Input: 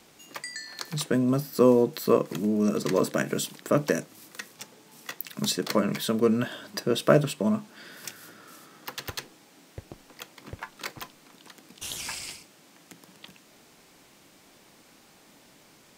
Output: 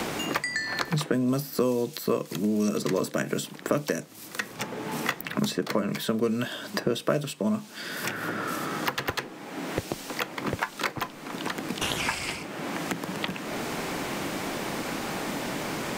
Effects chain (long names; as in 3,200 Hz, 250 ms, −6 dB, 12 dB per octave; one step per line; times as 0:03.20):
multiband upward and downward compressor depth 100%